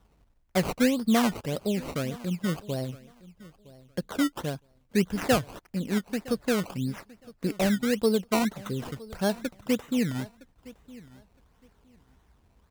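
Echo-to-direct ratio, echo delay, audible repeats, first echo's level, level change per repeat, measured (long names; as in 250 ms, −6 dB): −20.5 dB, 963 ms, 2, −20.5 dB, −14.5 dB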